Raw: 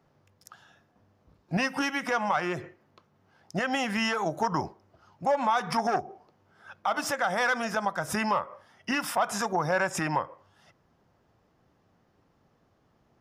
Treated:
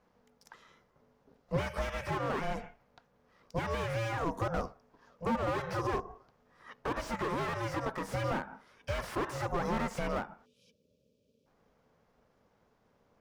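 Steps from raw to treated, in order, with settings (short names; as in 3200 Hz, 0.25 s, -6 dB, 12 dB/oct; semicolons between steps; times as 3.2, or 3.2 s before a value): spectral gain 10.46–11.47, 280–2600 Hz -28 dB; ring modulator 340 Hz; slew limiter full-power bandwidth 26 Hz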